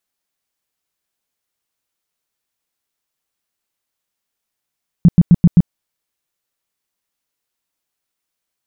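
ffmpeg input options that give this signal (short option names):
-f lavfi -i "aevalsrc='0.708*sin(2*PI*172*mod(t,0.13))*lt(mod(t,0.13),6/172)':d=0.65:s=44100"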